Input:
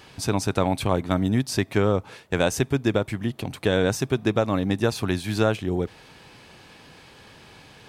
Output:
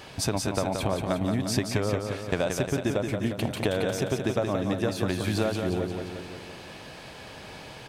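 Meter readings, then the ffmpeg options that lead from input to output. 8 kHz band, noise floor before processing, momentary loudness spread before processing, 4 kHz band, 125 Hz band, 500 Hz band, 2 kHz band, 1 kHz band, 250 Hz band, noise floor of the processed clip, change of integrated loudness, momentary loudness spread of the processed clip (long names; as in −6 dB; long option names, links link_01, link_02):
−1.0 dB, −50 dBFS, 5 LU, −2.0 dB, −4.0 dB, −3.5 dB, −4.0 dB, −4.0 dB, −4.0 dB, −44 dBFS, −3.5 dB, 15 LU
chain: -filter_complex "[0:a]equalizer=frequency=620:width_type=o:width=0.43:gain=6.5,acompressor=threshold=-27dB:ratio=6,asplit=2[link_01][link_02];[link_02]aecho=0:1:176|352|528|704|880|1056|1232|1408:0.531|0.313|0.185|0.109|0.0643|0.038|0.0224|0.0132[link_03];[link_01][link_03]amix=inputs=2:normalize=0,volume=3dB"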